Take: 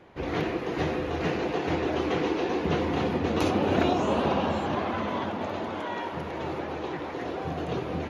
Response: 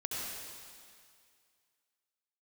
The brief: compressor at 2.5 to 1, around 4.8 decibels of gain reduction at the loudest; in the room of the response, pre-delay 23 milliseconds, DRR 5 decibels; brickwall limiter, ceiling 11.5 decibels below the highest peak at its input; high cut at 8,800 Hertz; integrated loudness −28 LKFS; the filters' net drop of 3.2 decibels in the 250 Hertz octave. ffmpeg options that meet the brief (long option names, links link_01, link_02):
-filter_complex "[0:a]lowpass=8800,equalizer=frequency=250:width_type=o:gain=-4.5,acompressor=threshold=-29dB:ratio=2.5,alimiter=level_in=5.5dB:limit=-24dB:level=0:latency=1,volume=-5.5dB,asplit=2[link_01][link_02];[1:a]atrim=start_sample=2205,adelay=23[link_03];[link_02][link_03]afir=irnorm=-1:irlink=0,volume=-8.5dB[link_04];[link_01][link_04]amix=inputs=2:normalize=0,volume=9dB"